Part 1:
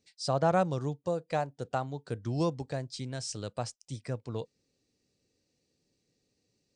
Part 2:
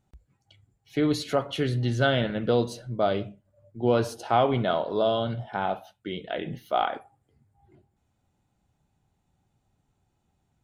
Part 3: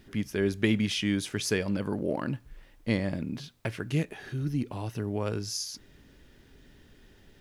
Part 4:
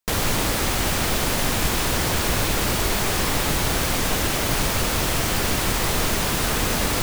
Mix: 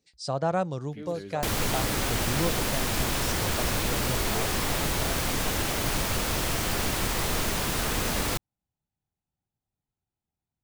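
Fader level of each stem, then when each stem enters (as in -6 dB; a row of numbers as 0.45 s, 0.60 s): -0.5 dB, -18.0 dB, -15.5 dB, -5.5 dB; 0.00 s, 0.00 s, 0.80 s, 1.35 s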